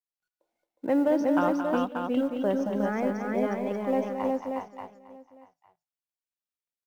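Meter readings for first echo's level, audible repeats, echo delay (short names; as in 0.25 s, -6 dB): -19.0 dB, 9, 83 ms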